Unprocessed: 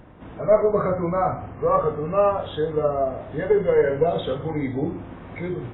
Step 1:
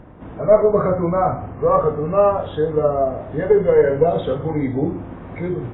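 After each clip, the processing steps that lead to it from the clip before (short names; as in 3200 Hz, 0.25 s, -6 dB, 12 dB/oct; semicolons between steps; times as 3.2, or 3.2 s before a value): high shelf 2500 Hz -12 dB; gain +5 dB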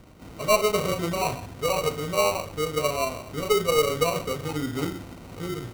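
sample-and-hold 26×; gain -8 dB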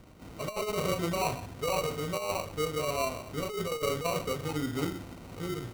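negative-ratio compressor -24 dBFS, ratio -0.5; gain -5 dB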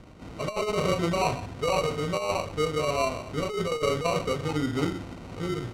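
air absorption 54 m; gain +5 dB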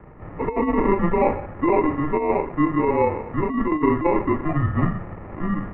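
mistuned SSB -160 Hz 160–2100 Hz; gain +7.5 dB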